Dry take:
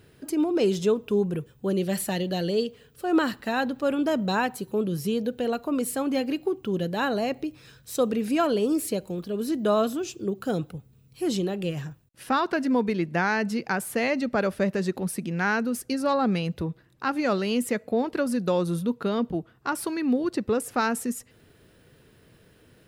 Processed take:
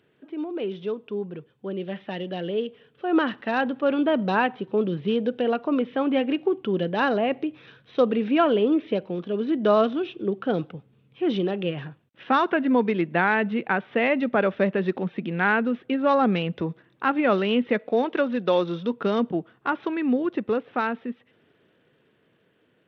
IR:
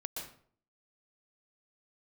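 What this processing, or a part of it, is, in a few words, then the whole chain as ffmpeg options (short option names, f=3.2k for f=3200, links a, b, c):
Bluetooth headset: -filter_complex "[0:a]asettb=1/sr,asplit=3[a][b][c];[a]atrim=end=17.794[d];[b]atrim=start=17.79:end=18.93,asetpts=PTS-STARTPTS,afade=t=in:d=0.004:c=qsin,afade=t=out:st=1.136:d=0.004:c=qsin,bass=f=250:g=-7,treble=f=4k:g=10[e];[c]atrim=start=18.926[f];[d][e]acrossfade=d=0.004:c1=hsin:c2=qsin[g];[g][f]acrossfade=d=0.004:c1=qsin:c2=hsin,highpass=190,dynaudnorm=f=510:g=11:m=16dB,aresample=8000,aresample=44100,volume=-6.5dB" -ar 32000 -c:a sbc -b:a 64k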